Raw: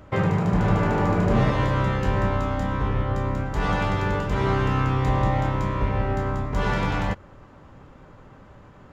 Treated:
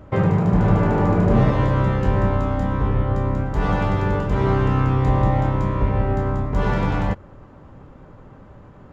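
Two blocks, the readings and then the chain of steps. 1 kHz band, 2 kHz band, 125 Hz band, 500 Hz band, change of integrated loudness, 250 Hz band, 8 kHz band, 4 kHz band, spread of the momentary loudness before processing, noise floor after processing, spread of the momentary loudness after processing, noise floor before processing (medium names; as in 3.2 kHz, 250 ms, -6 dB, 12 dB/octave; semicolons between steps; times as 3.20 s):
+1.5 dB, -1.0 dB, +4.5 dB, +3.5 dB, +3.5 dB, +4.0 dB, no reading, -3.5 dB, 5 LU, -45 dBFS, 5 LU, -49 dBFS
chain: tilt shelf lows +4.5 dB, about 1.3 kHz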